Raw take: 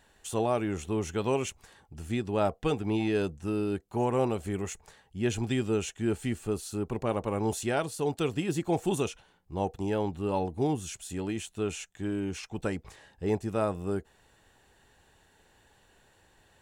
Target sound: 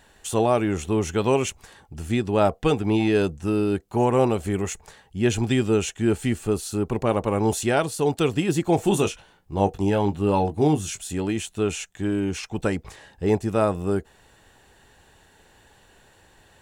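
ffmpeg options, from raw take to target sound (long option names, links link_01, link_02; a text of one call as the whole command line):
ffmpeg -i in.wav -filter_complex "[0:a]asettb=1/sr,asplit=3[link_01][link_02][link_03];[link_01]atrim=end=8.764[link_04];[link_02]atrim=start=8.76:end=11.01,asetpts=PTS-STARTPTS,afade=type=in:duration=0.004:curve=qsin,afade=type=out:start_time=2.246:duration=0.004:curve=qsin,asplit=2[link_05][link_06];[link_06]adelay=20,volume=-8dB[link_07];[link_05][link_07]amix=inputs=2:normalize=0,atrim=end_sample=99225[link_08];[link_03]atrim=start=11.006[link_09];[link_04][link_08]acrossfade=duration=0.004:curve1=hsin:curve2=qsin[link_10];[link_10][link_09]acrossfade=duration=0.004:curve1=qsin:curve2=hsin,volume=7.5dB" out.wav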